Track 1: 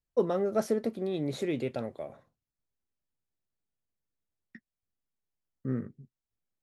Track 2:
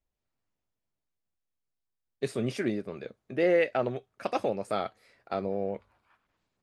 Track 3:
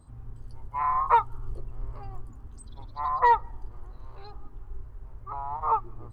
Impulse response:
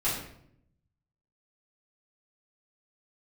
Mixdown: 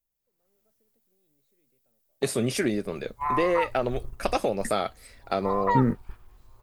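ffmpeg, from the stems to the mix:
-filter_complex "[0:a]highshelf=frequency=10000:gain=-11.5,acompressor=threshold=-29dB:ratio=6,adelay=100,volume=2dB[link_01];[1:a]volume=-4.5dB,asplit=2[link_02][link_03];[2:a]agate=range=-11dB:threshold=-32dB:ratio=16:detection=peak,adelay=2450,volume=-11dB[link_04];[link_03]apad=whole_len=296756[link_05];[link_01][link_05]sidechaingate=range=-53dB:threshold=-59dB:ratio=16:detection=peak[link_06];[link_02][link_04]amix=inputs=2:normalize=0,acompressor=threshold=-31dB:ratio=6,volume=0dB[link_07];[link_06][link_07]amix=inputs=2:normalize=0,aemphasis=mode=production:type=50fm,dynaudnorm=framelen=300:gausssize=3:maxgain=11dB"

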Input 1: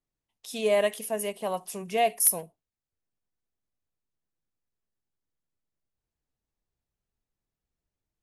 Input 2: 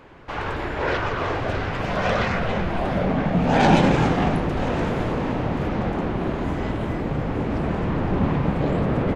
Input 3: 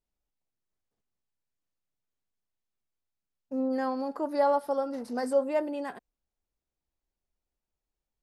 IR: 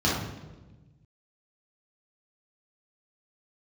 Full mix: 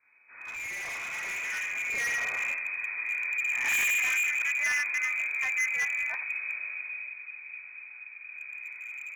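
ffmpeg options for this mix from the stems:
-filter_complex "[0:a]agate=range=-6dB:threshold=-44dB:ratio=16:detection=peak,acompressor=threshold=-26dB:ratio=5,flanger=delay=8.8:depth=4.9:regen=-73:speed=0.85:shape=triangular,volume=-2.5dB,asplit=3[link_01][link_02][link_03];[link_02]volume=-12dB[link_04];[1:a]agate=range=-13dB:threshold=-14dB:ratio=16:detection=peak,volume=5.5dB,afade=type=out:start_time=1.33:duration=0.24:silence=0.421697,afade=type=out:start_time=6.39:duration=0.73:silence=0.398107,afade=type=in:start_time=8.24:duration=0.38:silence=0.398107,asplit=2[link_05][link_06];[link_06]volume=-18.5dB[link_07];[2:a]adelay=250,volume=-10.5dB[link_08];[link_03]apad=whole_len=403624[link_09];[link_05][link_09]sidechaingate=range=-33dB:threshold=-59dB:ratio=16:detection=peak[link_10];[3:a]atrim=start_sample=2205[link_11];[link_04][link_07]amix=inputs=2:normalize=0[link_12];[link_12][link_11]afir=irnorm=-1:irlink=0[link_13];[link_01][link_10][link_08][link_13]amix=inputs=4:normalize=0,lowpass=frequency=2200:width_type=q:width=0.5098,lowpass=frequency=2200:width_type=q:width=0.6013,lowpass=frequency=2200:width_type=q:width=0.9,lowpass=frequency=2200:width_type=q:width=2.563,afreqshift=-2600,volume=35.5dB,asoftclip=hard,volume=-35.5dB,dynaudnorm=framelen=420:gausssize=9:maxgain=10.5dB"

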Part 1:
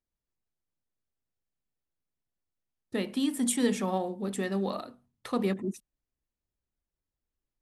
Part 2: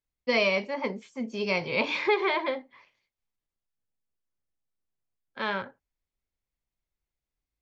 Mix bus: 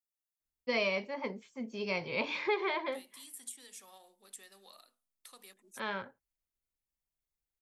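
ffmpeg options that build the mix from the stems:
ffmpeg -i stem1.wav -i stem2.wav -filter_complex "[0:a]highpass=frequency=310:poles=1,aderivative,acrossover=split=690|5200[link_01][link_02][link_03];[link_01]acompressor=threshold=-57dB:ratio=4[link_04];[link_02]acompressor=threshold=-53dB:ratio=4[link_05];[link_03]acompressor=threshold=-43dB:ratio=4[link_06];[link_04][link_05][link_06]amix=inputs=3:normalize=0,volume=-3dB[link_07];[1:a]adelay=400,volume=-7dB[link_08];[link_07][link_08]amix=inputs=2:normalize=0" out.wav

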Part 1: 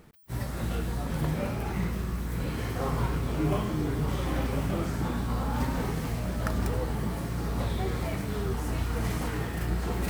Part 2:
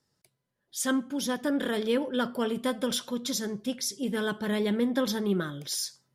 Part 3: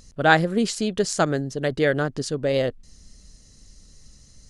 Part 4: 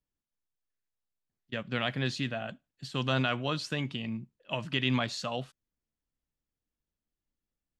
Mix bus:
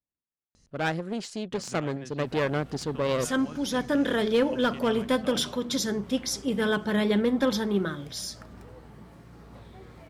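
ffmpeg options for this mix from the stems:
ffmpeg -i stem1.wav -i stem2.wav -i stem3.wav -i stem4.wav -filter_complex "[0:a]adelay=1950,volume=-15.5dB[link_01];[1:a]bandreject=frequency=60:width_type=h:width=6,bandreject=frequency=120:width_type=h:width=6,bandreject=frequency=180:width_type=h:width=6,bandreject=frequency=240:width_type=h:width=6,bandreject=frequency=300:width_type=h:width=6,bandreject=frequency=360:width_type=h:width=6,bandreject=frequency=420:width_type=h:width=6,dynaudnorm=framelen=270:gausssize=9:maxgain=5dB,adelay=2450,volume=0dB[link_02];[2:a]dynaudnorm=framelen=190:gausssize=11:maxgain=11.5dB,aeval=exprs='clip(val(0),-1,0.0631)':channel_layout=same,adelay=550,volume=-8dB[link_03];[3:a]acompressor=threshold=-34dB:ratio=5,adynamicsmooth=sensitivity=2:basefreq=2000,volume=-3.5dB[link_04];[link_01][link_02][link_03][link_04]amix=inputs=4:normalize=0,highpass=frequency=91:poles=1,highshelf=frequency=7700:gain=-10.5,volume=16.5dB,asoftclip=hard,volume=-16.5dB" out.wav

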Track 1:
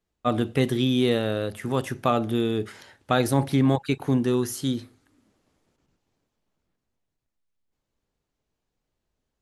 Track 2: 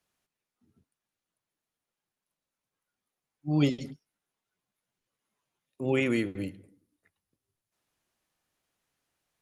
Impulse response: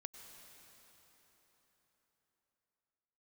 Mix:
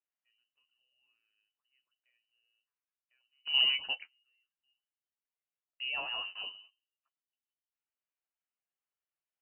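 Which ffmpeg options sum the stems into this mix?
-filter_complex "[0:a]volume=-6.5dB[link_01];[1:a]agate=range=-15dB:threshold=-54dB:ratio=16:detection=peak,highshelf=frequency=2800:gain=10,acompressor=threshold=-28dB:ratio=6,volume=-1.5dB,asplit=2[link_02][link_03];[link_03]apad=whole_len=415013[link_04];[link_01][link_04]sidechaingate=range=-45dB:threshold=-56dB:ratio=16:detection=peak[link_05];[link_05][link_02]amix=inputs=2:normalize=0,flanger=delay=7.4:depth=5.7:regen=38:speed=0.57:shape=sinusoidal,lowpass=frequency=2600:width_type=q:width=0.5098,lowpass=frequency=2600:width_type=q:width=0.6013,lowpass=frequency=2600:width_type=q:width=0.9,lowpass=frequency=2600:width_type=q:width=2.563,afreqshift=-3100"

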